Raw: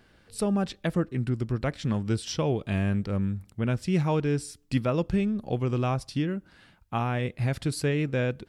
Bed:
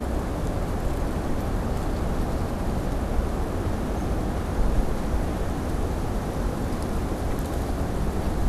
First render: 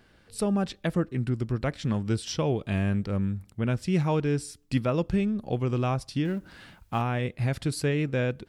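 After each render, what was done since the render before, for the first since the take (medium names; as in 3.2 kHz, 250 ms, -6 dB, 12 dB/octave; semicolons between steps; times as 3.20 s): 6.25–7.02 s: companding laws mixed up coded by mu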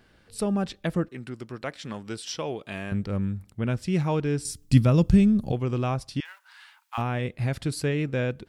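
1.08–2.92 s: high-pass 540 Hz 6 dB/octave; 4.45–5.52 s: tone controls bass +12 dB, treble +10 dB; 6.20–6.98 s: elliptic high-pass 900 Hz, stop band 80 dB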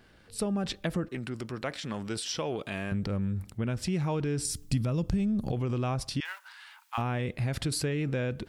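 transient shaper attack 0 dB, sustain +7 dB; compression 4:1, threshold -27 dBFS, peak gain reduction 13 dB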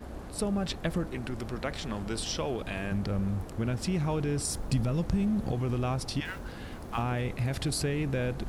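add bed -14.5 dB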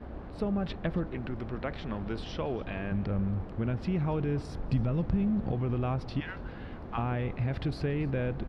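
distance through air 330 m; delay 281 ms -21.5 dB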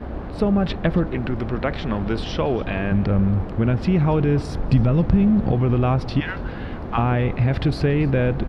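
trim +11.5 dB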